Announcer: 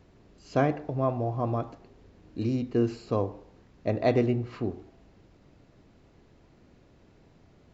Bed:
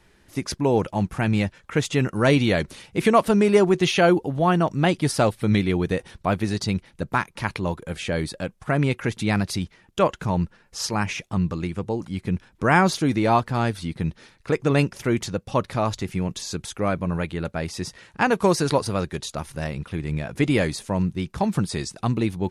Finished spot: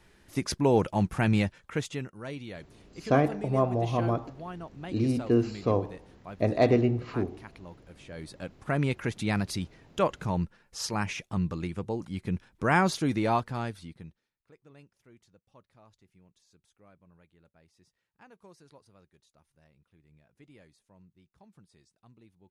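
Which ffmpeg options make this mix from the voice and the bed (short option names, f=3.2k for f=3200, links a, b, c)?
-filter_complex "[0:a]adelay=2550,volume=1.5dB[a];[1:a]volume=12.5dB,afade=t=out:st=1.32:d=0.81:silence=0.11885,afade=t=in:st=8.07:d=0.66:silence=0.177828,afade=t=out:st=13.2:d=1.01:silence=0.0354813[b];[a][b]amix=inputs=2:normalize=0"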